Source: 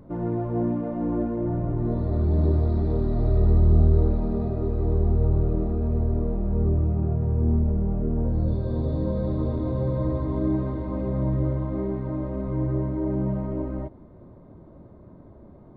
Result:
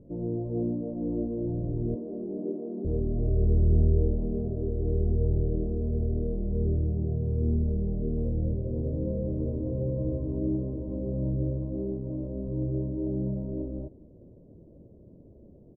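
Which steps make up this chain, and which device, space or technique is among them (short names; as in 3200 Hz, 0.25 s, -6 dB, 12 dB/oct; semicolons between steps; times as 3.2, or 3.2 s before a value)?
1.95–2.85 Chebyshev high-pass 200 Hz, order 5; under water (LPF 550 Hz 24 dB/oct; bell 480 Hz +5 dB 0.34 oct); outdoor echo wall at 75 m, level -29 dB; gain -4.5 dB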